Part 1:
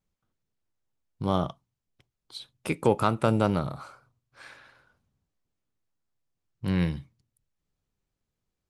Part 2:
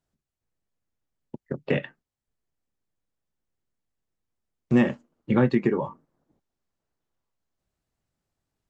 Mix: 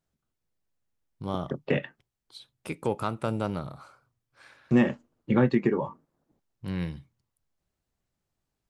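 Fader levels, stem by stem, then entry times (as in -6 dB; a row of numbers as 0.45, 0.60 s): -6.0, -1.5 dB; 0.00, 0.00 s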